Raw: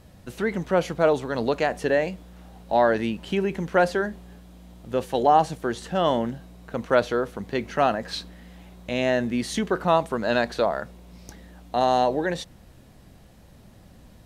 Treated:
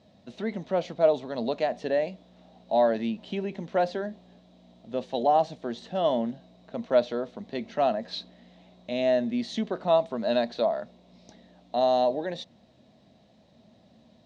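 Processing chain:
loudspeaker in its box 130–6,100 Hz, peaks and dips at 230 Hz +8 dB, 640 Hz +10 dB, 1,500 Hz −6 dB, 3,800 Hz +8 dB
notch filter 1,200 Hz, Q 21
level −8.5 dB

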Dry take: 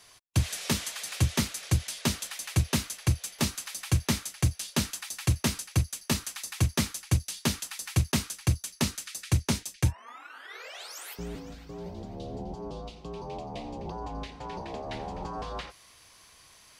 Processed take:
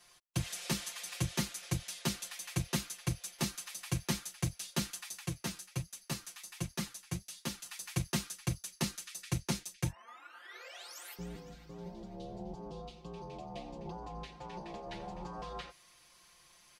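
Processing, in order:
comb filter 5.7 ms, depth 89%
0:05.19–0:07.66: flanger 1.3 Hz, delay 3.2 ms, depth 9.4 ms, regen +48%
level −9 dB

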